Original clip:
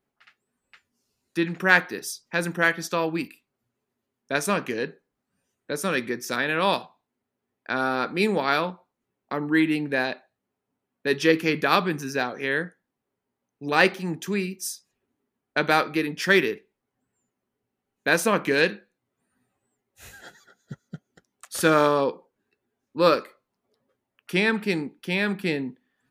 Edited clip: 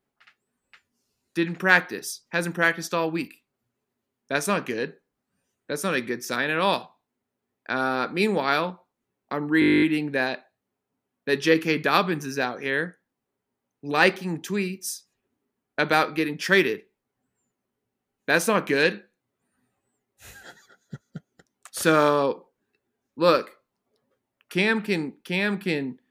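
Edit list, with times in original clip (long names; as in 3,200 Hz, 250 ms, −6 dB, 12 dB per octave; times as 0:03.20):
0:09.60: stutter 0.02 s, 12 plays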